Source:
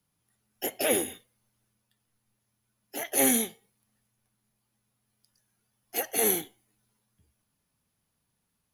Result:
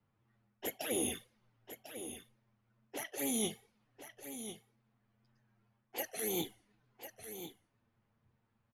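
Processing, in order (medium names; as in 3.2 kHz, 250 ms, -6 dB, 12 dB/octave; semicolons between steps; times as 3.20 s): wow and flutter 63 cents; reverse; compression 8:1, threshold -37 dBFS, peak gain reduction 17.5 dB; reverse; touch-sensitive flanger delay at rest 9.1 ms, full sweep at -35.5 dBFS; level-controlled noise filter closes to 1.8 kHz, open at -42 dBFS; delay 1048 ms -10.5 dB; trim +6 dB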